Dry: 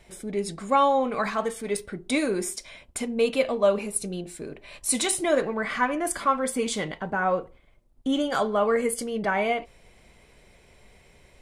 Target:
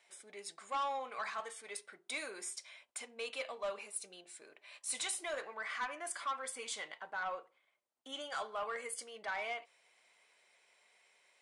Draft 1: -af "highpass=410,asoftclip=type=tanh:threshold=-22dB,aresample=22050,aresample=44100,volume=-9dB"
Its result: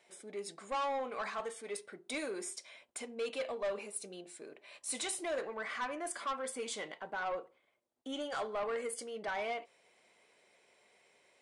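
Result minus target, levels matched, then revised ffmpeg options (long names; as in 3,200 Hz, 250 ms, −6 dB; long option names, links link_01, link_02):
500 Hz band +4.5 dB
-af "highpass=890,asoftclip=type=tanh:threshold=-22dB,aresample=22050,aresample=44100,volume=-9dB"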